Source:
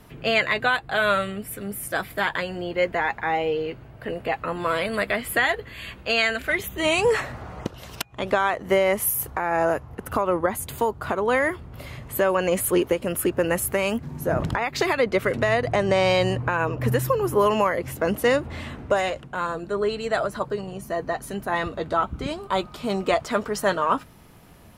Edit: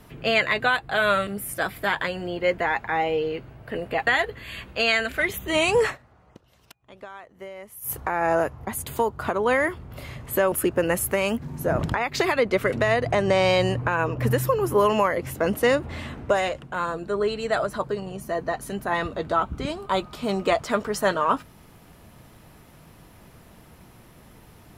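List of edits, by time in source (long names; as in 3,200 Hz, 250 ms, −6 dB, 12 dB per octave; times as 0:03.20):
0:01.27–0:01.61: remove
0:04.41–0:05.37: remove
0:07.16–0:09.23: duck −19.5 dB, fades 0.12 s
0:09.97–0:10.49: remove
0:12.34–0:13.13: remove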